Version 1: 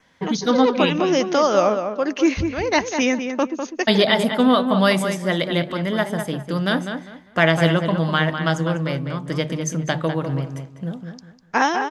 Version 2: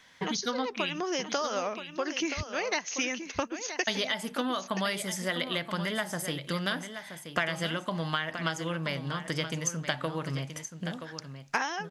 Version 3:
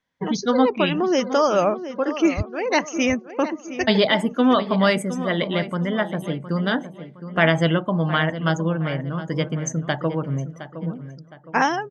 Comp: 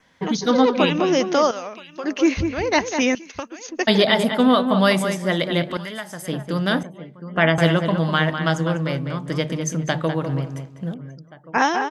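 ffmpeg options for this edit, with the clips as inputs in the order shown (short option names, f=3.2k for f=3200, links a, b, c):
-filter_complex "[1:a]asplit=3[a][b][c];[2:a]asplit=2[d][e];[0:a]asplit=6[f][g][h][i][j][k];[f]atrim=end=1.512[l];[a]atrim=start=1.508:end=2.042[m];[g]atrim=start=2.038:end=3.152[n];[b]atrim=start=3.148:end=3.692[o];[h]atrim=start=3.688:end=5.772[p];[c]atrim=start=5.768:end=6.282[q];[i]atrim=start=6.278:end=6.832[r];[d]atrim=start=6.828:end=7.582[s];[j]atrim=start=7.578:end=10.942[t];[e]atrim=start=10.938:end=11.582[u];[k]atrim=start=11.578[v];[l][m]acrossfade=d=0.004:c1=hsin:c2=hsin[w];[w][n]acrossfade=d=0.004:c1=hsin:c2=hsin[x];[x][o]acrossfade=d=0.004:c1=hsin:c2=hsin[y];[y][p]acrossfade=d=0.004:c1=hsin:c2=hsin[z];[z][q]acrossfade=d=0.004:c1=hsin:c2=hsin[aa];[aa][r]acrossfade=d=0.004:c1=hsin:c2=hsin[ab];[ab][s]acrossfade=d=0.004:c1=hsin:c2=hsin[ac];[ac][t]acrossfade=d=0.004:c1=hsin:c2=hsin[ad];[ad][u]acrossfade=d=0.004:c1=hsin:c2=hsin[ae];[ae][v]acrossfade=d=0.004:c1=hsin:c2=hsin"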